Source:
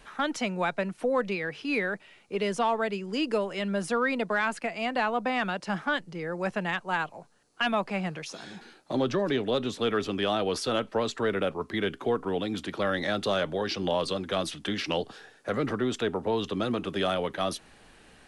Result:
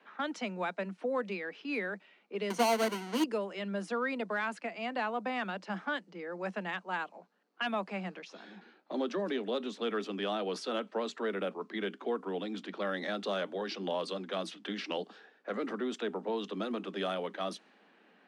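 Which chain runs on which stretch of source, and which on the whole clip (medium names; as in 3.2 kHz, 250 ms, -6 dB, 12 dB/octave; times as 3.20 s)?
2.50–3.24 s: square wave that keeps the level + rippled EQ curve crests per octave 1.9, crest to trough 8 dB
whole clip: level-controlled noise filter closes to 2.7 kHz, open at -22.5 dBFS; steep high-pass 180 Hz 96 dB/octave; treble shelf 6.8 kHz -6 dB; trim -6.5 dB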